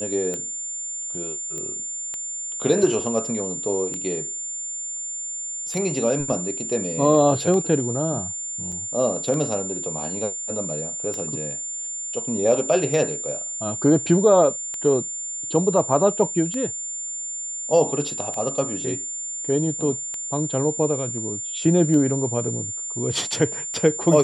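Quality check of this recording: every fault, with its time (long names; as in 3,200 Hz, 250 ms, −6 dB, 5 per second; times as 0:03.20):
scratch tick 33 1/3 rpm −17 dBFS
whistle 7,200 Hz −28 dBFS
0:01.58: click −20 dBFS
0:08.72–0:08.73: drop-out 5.3 ms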